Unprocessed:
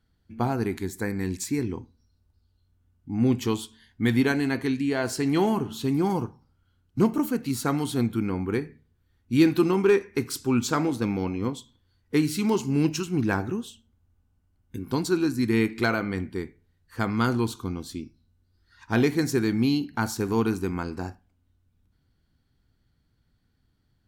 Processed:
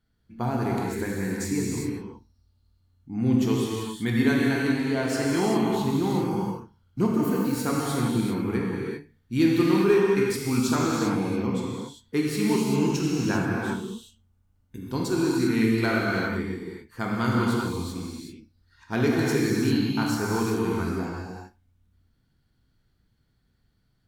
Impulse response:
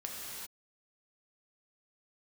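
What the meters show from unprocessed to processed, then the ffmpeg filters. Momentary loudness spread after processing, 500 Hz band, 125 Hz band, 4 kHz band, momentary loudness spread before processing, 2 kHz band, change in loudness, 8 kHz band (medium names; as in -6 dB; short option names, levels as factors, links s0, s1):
12 LU, +1.0 dB, +1.0 dB, +1.5 dB, 12 LU, +1.5 dB, +0.5 dB, +1.0 dB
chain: -filter_complex "[1:a]atrim=start_sample=2205[s0];[0:a][s0]afir=irnorm=-1:irlink=0"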